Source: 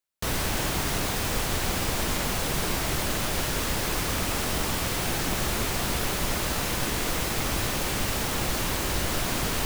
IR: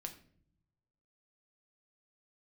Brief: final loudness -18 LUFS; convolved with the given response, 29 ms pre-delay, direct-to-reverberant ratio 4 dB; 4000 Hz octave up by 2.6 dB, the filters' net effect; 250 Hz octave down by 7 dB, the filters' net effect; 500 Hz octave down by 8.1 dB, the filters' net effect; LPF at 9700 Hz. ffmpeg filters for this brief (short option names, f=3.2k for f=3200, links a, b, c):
-filter_complex "[0:a]lowpass=9.7k,equalizer=f=250:t=o:g=-7.5,equalizer=f=500:t=o:g=-8.5,equalizer=f=4k:t=o:g=3.5,asplit=2[a][b];[1:a]atrim=start_sample=2205,adelay=29[c];[b][c]afir=irnorm=-1:irlink=0,volume=-1dB[d];[a][d]amix=inputs=2:normalize=0,volume=8.5dB"